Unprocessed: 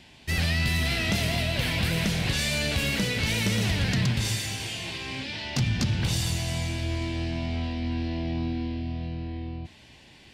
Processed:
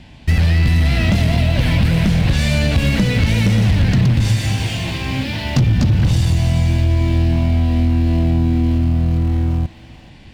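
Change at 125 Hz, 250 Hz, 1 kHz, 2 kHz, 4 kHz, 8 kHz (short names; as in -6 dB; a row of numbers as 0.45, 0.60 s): +14.0, +12.0, +8.0, +4.5, +3.0, +0.5 dB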